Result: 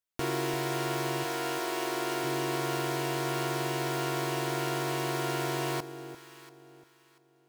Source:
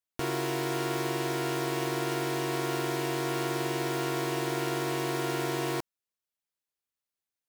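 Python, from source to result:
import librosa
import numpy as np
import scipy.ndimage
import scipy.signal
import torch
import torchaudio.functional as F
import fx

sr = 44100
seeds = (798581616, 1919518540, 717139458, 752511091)

y = fx.highpass(x, sr, hz=fx.line((1.23, 510.0), (2.23, 180.0)), slope=12, at=(1.23, 2.23), fade=0.02)
y = fx.echo_alternate(y, sr, ms=344, hz=890.0, feedback_pct=51, wet_db=-10)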